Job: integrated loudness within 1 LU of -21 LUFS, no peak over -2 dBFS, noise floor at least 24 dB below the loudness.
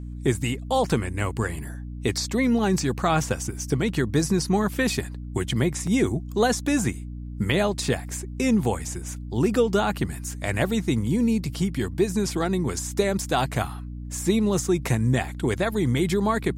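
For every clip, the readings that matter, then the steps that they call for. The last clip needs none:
dropouts 1; longest dropout 3.1 ms; hum 60 Hz; highest harmonic 300 Hz; hum level -32 dBFS; loudness -24.5 LUFS; peak level -9.0 dBFS; loudness target -21.0 LUFS
-> interpolate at 5.87 s, 3.1 ms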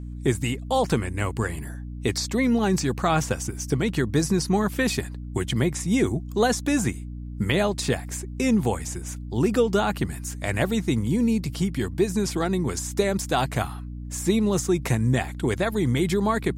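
dropouts 0; hum 60 Hz; highest harmonic 300 Hz; hum level -32 dBFS
-> de-hum 60 Hz, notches 5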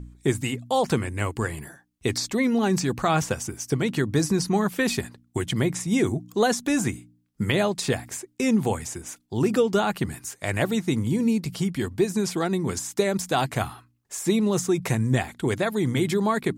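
hum not found; loudness -25.0 LUFS; peak level -9.0 dBFS; loudness target -21.0 LUFS
-> trim +4 dB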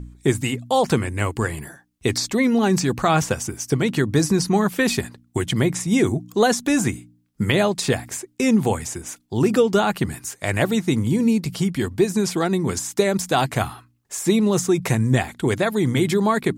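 loudness -21.0 LUFS; peak level -5.0 dBFS; noise floor -61 dBFS

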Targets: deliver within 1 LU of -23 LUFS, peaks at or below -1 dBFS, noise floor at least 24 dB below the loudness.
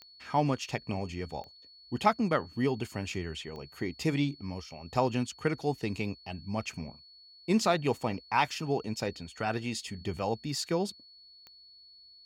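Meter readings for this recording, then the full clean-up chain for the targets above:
clicks found 4; steady tone 4.4 kHz; tone level -53 dBFS; loudness -32.5 LUFS; peak level -12.0 dBFS; loudness target -23.0 LUFS
-> de-click; band-stop 4.4 kHz, Q 30; trim +9.5 dB

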